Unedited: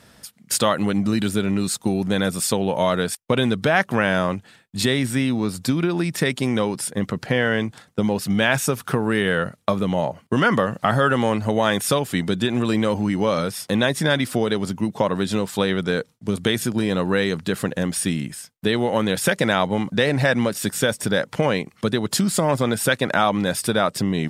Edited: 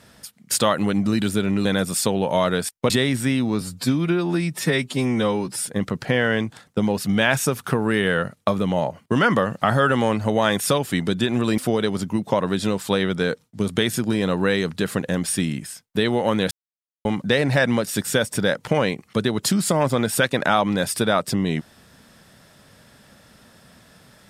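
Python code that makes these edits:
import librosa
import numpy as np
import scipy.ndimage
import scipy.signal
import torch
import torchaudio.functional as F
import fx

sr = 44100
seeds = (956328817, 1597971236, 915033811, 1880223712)

y = fx.edit(x, sr, fx.cut(start_s=1.65, length_s=0.46),
    fx.cut(start_s=3.36, length_s=1.44),
    fx.stretch_span(start_s=5.51, length_s=1.38, factor=1.5),
    fx.cut(start_s=12.79, length_s=1.47),
    fx.silence(start_s=19.19, length_s=0.54), tone=tone)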